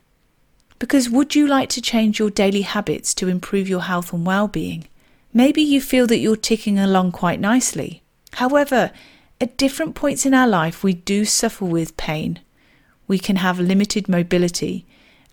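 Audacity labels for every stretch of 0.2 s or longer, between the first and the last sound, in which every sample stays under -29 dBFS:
4.850000	5.350000	silence
7.930000	8.270000	silence
8.880000	9.410000	silence
12.360000	13.090000	silence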